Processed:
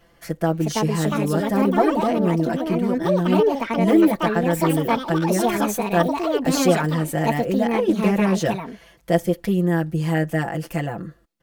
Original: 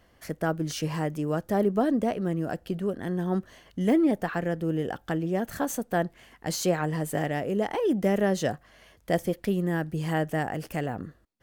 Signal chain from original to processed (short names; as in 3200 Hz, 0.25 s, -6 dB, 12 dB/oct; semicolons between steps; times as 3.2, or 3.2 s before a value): comb 5.9 ms, depth 96%; echoes that change speed 0.439 s, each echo +5 st, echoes 2; 7.72–8.48 Doppler distortion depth 0.16 ms; gain +2 dB